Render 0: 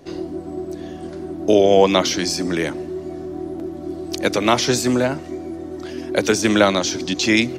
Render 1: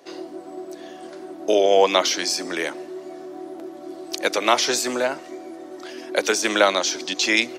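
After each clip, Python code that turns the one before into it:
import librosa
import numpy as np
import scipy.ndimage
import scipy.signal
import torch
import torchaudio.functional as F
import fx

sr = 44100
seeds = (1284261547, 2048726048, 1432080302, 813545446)

y = scipy.signal.sosfilt(scipy.signal.butter(2, 490.0, 'highpass', fs=sr, output='sos'), x)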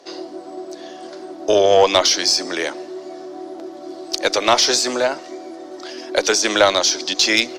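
y = fx.curve_eq(x, sr, hz=(160.0, 630.0, 2500.0, 5000.0, 13000.0), db=(0, 5, 2, 10, -7))
y = fx.tube_stage(y, sr, drive_db=1.0, bias=0.2)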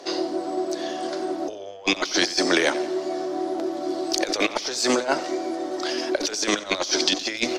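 y = fx.over_compress(x, sr, threshold_db=-23.0, ratio=-0.5)
y = fx.echo_feedback(y, sr, ms=90, feedback_pct=48, wet_db=-17)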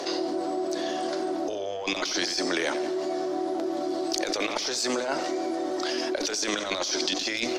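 y = fx.env_flatten(x, sr, amount_pct=70)
y = F.gain(torch.from_numpy(y), -8.5).numpy()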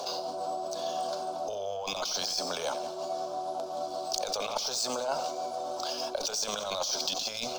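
y = scipy.ndimage.median_filter(x, 3, mode='constant')
y = fx.fixed_phaser(y, sr, hz=790.0, stages=4)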